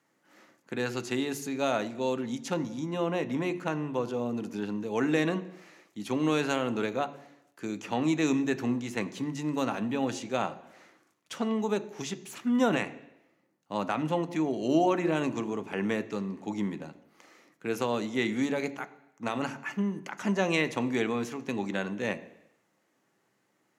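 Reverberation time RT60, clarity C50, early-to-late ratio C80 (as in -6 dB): 0.80 s, 15.5 dB, 18.0 dB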